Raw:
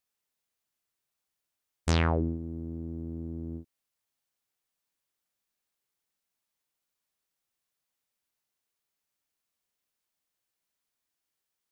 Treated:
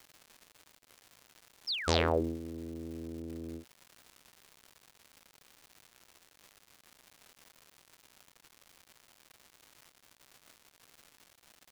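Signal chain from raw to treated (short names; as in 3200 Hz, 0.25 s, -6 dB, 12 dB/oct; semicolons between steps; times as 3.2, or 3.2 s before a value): painted sound fall, 1.67–2.1, 240–5700 Hz -37 dBFS; graphic EQ 125/500/4000 Hz -10/+9/+9 dB; crackle 300/s -39 dBFS; gain -4 dB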